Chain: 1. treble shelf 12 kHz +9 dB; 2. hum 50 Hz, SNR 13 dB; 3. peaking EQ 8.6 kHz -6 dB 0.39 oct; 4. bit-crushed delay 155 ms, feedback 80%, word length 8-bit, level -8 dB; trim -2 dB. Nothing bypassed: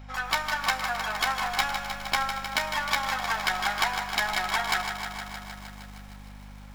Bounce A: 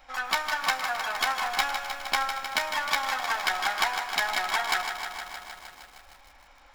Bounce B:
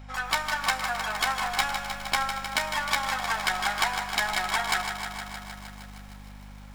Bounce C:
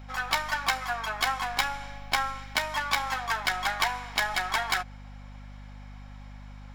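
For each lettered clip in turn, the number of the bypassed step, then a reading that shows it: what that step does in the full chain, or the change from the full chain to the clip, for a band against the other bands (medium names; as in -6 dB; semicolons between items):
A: 2, 250 Hz band -7.0 dB; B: 3, 8 kHz band +2.5 dB; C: 4, 125 Hz band +2.5 dB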